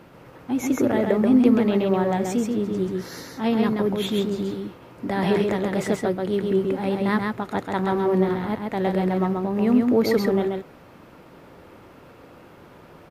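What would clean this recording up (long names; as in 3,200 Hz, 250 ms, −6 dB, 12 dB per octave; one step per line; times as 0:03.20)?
echo removal 133 ms −3.5 dB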